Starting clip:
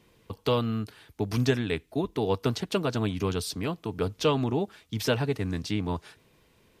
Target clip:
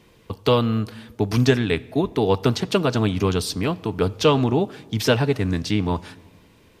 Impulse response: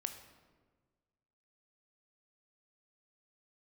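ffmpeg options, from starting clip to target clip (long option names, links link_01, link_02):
-filter_complex "[0:a]asplit=2[link_01][link_02];[1:a]atrim=start_sample=2205,lowpass=9000[link_03];[link_02][link_03]afir=irnorm=-1:irlink=0,volume=-8dB[link_04];[link_01][link_04]amix=inputs=2:normalize=0,volume=5dB"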